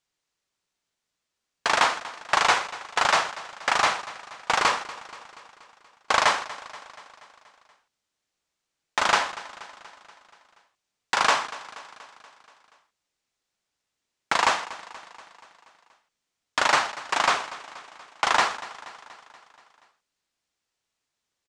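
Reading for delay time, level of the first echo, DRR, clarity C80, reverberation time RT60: 0.239 s, -17.0 dB, none, none, none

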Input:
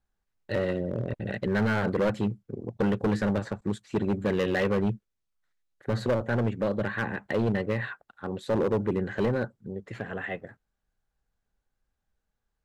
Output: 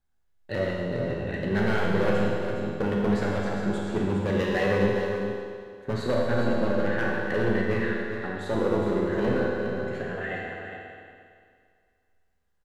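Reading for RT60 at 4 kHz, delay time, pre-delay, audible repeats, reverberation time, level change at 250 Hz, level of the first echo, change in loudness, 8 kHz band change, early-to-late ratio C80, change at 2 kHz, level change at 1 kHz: 2.0 s, 0.41 s, 12 ms, 1, 2.1 s, +1.5 dB, -8.0 dB, +2.0 dB, n/a, -0.5 dB, +3.5 dB, +3.5 dB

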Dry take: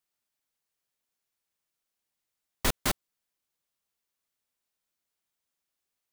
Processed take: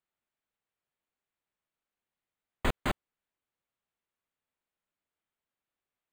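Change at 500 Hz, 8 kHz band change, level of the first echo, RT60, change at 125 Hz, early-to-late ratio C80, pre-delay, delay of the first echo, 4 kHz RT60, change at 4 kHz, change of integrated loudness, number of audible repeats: 0.0 dB, -16.0 dB, none, none, 0.0 dB, none, none, none, none, -8.0 dB, -4.0 dB, none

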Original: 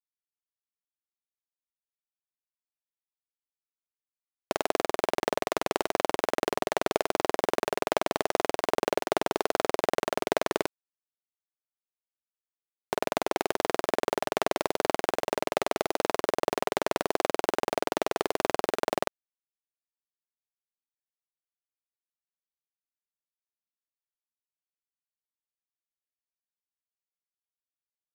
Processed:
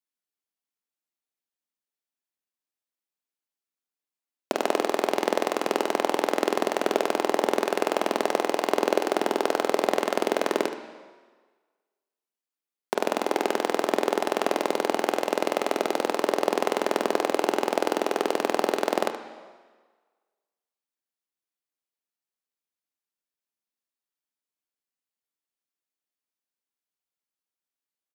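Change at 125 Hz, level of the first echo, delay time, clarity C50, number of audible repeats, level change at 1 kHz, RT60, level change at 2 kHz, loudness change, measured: n/a, -12.5 dB, 74 ms, 7.5 dB, 1, +3.0 dB, 1.5 s, +2.5 dB, +3.5 dB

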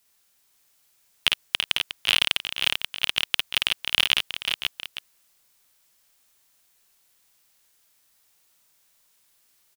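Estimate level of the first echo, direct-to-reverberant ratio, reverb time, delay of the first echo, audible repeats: -3.0 dB, none, none, 52 ms, 5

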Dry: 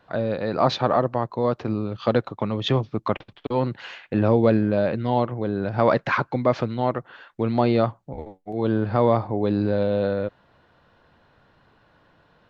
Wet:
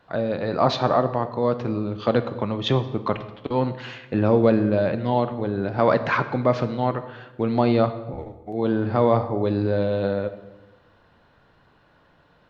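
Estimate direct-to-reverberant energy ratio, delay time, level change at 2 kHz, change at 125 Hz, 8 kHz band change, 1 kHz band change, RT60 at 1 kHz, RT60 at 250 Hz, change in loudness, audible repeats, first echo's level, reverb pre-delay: 10.0 dB, none, +0.5 dB, 0.0 dB, n/a, +0.5 dB, 1.0 s, 1.4 s, +0.5 dB, none, none, 8 ms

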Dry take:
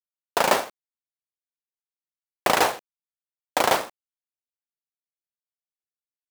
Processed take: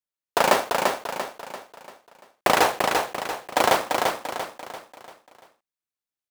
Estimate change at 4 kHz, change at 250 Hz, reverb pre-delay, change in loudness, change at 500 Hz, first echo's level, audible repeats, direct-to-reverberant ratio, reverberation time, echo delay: +2.0 dB, +3.0 dB, none, -0.5 dB, +3.0 dB, -4.0 dB, 5, none, none, 0.342 s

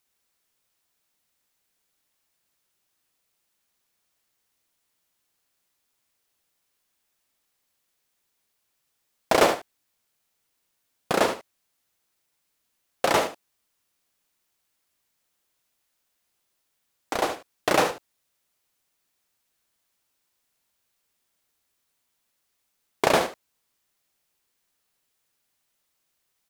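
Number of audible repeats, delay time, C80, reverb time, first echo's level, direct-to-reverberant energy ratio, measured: 1, 74 ms, none, none, -11.0 dB, none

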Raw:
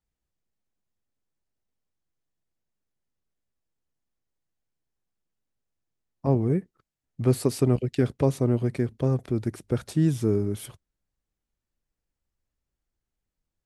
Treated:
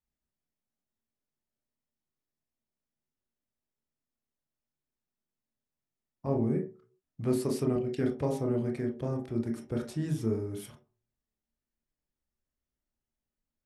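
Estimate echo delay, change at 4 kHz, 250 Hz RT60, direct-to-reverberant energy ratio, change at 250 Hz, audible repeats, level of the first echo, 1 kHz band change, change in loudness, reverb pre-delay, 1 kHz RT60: none, -7.0 dB, 0.35 s, 1.0 dB, -5.0 dB, none, none, -5.0 dB, -6.5 dB, 25 ms, 0.45 s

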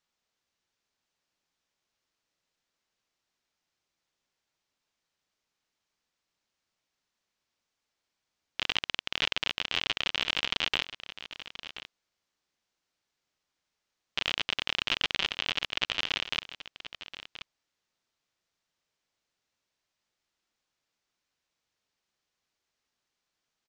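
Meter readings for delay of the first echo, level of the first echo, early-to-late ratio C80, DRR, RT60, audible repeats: 1.029 s, -13.5 dB, none, none, none, 1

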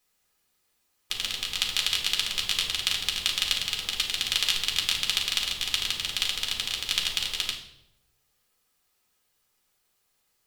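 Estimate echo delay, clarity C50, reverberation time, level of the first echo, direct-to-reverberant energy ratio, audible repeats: none, 7.0 dB, 0.80 s, none, -0.5 dB, none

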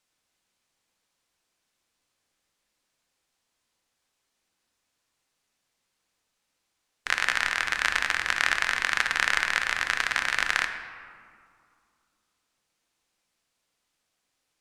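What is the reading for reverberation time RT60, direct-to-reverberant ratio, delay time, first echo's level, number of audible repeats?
2.3 s, 6.0 dB, none, none, none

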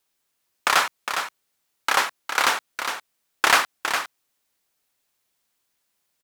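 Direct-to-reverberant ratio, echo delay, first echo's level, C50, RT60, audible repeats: none, 0.409 s, -7.5 dB, none, none, 1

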